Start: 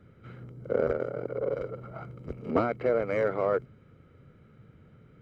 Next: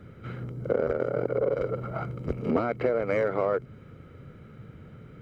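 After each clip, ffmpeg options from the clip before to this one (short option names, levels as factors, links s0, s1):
-af "acompressor=threshold=0.0316:ratio=10,volume=2.66"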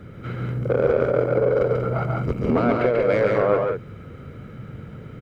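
-af "asoftclip=type=tanh:threshold=0.119,aecho=1:1:139.9|186.6:0.708|0.447,volume=2.11"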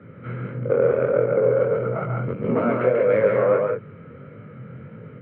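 -af "flanger=delay=18:depth=6.3:speed=1.6,highpass=f=110:w=0.5412,highpass=f=110:w=1.3066,equalizer=f=320:t=q:w=4:g=-4,equalizer=f=520:t=q:w=4:g=4,equalizer=f=750:t=q:w=4:g=-5,lowpass=f=2500:w=0.5412,lowpass=f=2500:w=1.3066,volume=1.26"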